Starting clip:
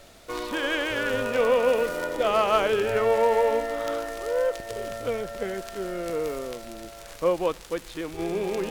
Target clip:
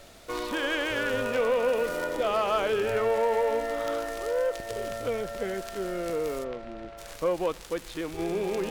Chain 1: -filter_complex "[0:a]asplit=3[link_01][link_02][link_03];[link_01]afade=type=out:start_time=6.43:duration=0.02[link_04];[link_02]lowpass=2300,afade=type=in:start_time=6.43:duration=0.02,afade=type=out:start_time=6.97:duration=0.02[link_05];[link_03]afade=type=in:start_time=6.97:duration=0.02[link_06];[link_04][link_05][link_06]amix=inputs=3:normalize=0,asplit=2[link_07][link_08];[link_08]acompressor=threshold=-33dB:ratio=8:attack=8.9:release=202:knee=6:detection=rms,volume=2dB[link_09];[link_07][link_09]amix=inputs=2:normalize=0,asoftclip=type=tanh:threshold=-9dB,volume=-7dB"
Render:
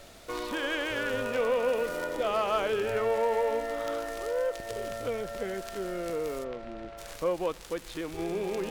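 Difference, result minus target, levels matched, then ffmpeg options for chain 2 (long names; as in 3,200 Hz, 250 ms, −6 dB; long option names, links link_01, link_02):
downward compressor: peak gain reduction +9 dB
-filter_complex "[0:a]asplit=3[link_01][link_02][link_03];[link_01]afade=type=out:start_time=6.43:duration=0.02[link_04];[link_02]lowpass=2300,afade=type=in:start_time=6.43:duration=0.02,afade=type=out:start_time=6.97:duration=0.02[link_05];[link_03]afade=type=in:start_time=6.97:duration=0.02[link_06];[link_04][link_05][link_06]amix=inputs=3:normalize=0,asplit=2[link_07][link_08];[link_08]acompressor=threshold=-23dB:ratio=8:attack=8.9:release=202:knee=6:detection=rms,volume=2dB[link_09];[link_07][link_09]amix=inputs=2:normalize=0,asoftclip=type=tanh:threshold=-9dB,volume=-7dB"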